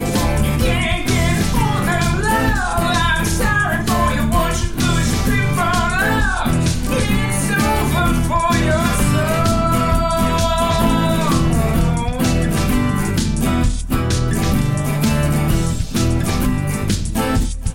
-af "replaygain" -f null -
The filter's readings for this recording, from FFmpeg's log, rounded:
track_gain = +0.9 dB
track_peak = 0.433